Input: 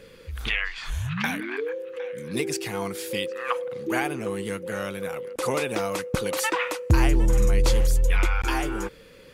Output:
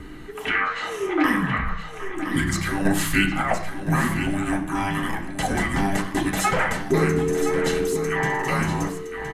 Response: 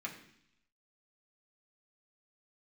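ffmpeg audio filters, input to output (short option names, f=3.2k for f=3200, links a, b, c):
-filter_complex "[0:a]asplit=2[a][b];[b]alimiter=limit=-20dB:level=0:latency=1,volume=2dB[c];[a][c]amix=inputs=2:normalize=0[d];[1:a]atrim=start_sample=2205,afade=t=out:st=0.23:d=0.01,atrim=end_sample=10584[e];[d][e]afir=irnorm=-1:irlink=0,acrossover=split=800|1500[f][g][h];[f]acompressor=mode=upward:threshold=-32dB:ratio=2.5[i];[i][g][h]amix=inputs=3:normalize=0,aresample=32000,aresample=44100,asettb=1/sr,asplit=3[j][k][l];[j]atrim=end=2.854[m];[k]atrim=start=2.85:end=3.42,asetpts=PTS-STARTPTS,afade=t=in:d=0.004:c=qsin,afade=t=out:st=0.566:d=0.004:c=qsin,acontrast=50[n];[l]atrim=start=3.416[o];[m][n]acrossfade=d=0.004:c1=hsin:c2=qsin[p];[p][o]acrossfade=d=0.004:c1=qsin:c2=hsin,asettb=1/sr,asplit=3[q][r][s];[q]atrim=end=4.754[t];[r]atrim=start=4.75:end=5.42,asetpts=PTS-STARTPTS,afade=t=in:d=0.004:c=qsin,afade=t=out:st=0.666:d=0.004:c=qsin,equalizer=f=4k:w=1:g=7[u];[s]atrim=start=5.416[v];[t][u]acrossfade=d=0.004:c1=hsin:c2=qsin[w];[w][v]acrossfade=d=0.004:c1=qsin:c2=hsin,aecho=1:1:1016:0.335,afreqshift=-490"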